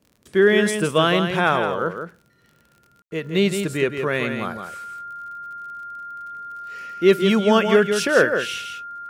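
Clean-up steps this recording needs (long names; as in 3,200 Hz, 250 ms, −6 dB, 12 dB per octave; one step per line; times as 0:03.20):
click removal
notch filter 1,400 Hz, Q 30
ambience match 0:03.02–0:03.11
echo removal 165 ms −7 dB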